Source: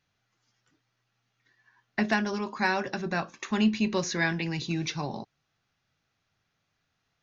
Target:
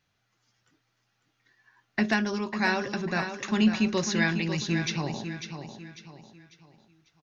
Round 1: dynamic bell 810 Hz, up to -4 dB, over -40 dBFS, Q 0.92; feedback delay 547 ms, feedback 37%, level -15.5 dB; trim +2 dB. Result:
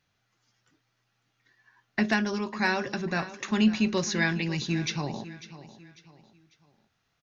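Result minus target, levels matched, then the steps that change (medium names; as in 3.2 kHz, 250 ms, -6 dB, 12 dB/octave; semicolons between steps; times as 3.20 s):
echo-to-direct -7 dB
change: feedback delay 547 ms, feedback 37%, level -8.5 dB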